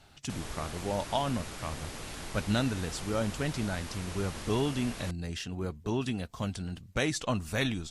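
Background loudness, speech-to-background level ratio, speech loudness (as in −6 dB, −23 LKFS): −41.5 LKFS, 8.0 dB, −33.5 LKFS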